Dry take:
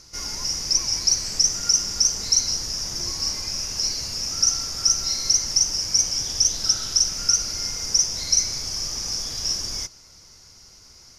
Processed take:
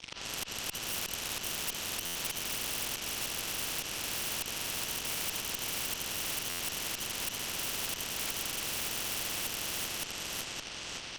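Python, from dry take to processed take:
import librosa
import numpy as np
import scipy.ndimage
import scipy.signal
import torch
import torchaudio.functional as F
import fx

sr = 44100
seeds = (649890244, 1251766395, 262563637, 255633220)

p1 = fx.partial_stretch(x, sr, pct=79)
p2 = np.sign(p1) * np.maximum(np.abs(p1) - 10.0 ** (-47.5 / 20.0), 0.0)
p3 = scipy.signal.sosfilt(scipy.signal.butter(4, 5600.0, 'lowpass', fs=sr, output='sos'), p2)
p4 = fx.high_shelf(p3, sr, hz=2500.0, db=10.5)
p5 = p4 + 10.0 ** (-16.0 / 20.0) * np.pad(p4, (int(85 * sr / 1000.0), 0))[:len(p4)]
p6 = fx.auto_swell(p5, sr, attack_ms=349.0)
p7 = p6 + fx.echo_feedback(p6, sr, ms=565, feedback_pct=40, wet_db=-4, dry=0)
p8 = fx.tube_stage(p7, sr, drive_db=27.0, bias=0.8)
p9 = fx.buffer_glitch(p8, sr, at_s=(2.05, 6.49), block=512, repeats=8)
p10 = fx.spectral_comp(p9, sr, ratio=4.0)
y = F.gain(torch.from_numpy(p10), 5.0).numpy()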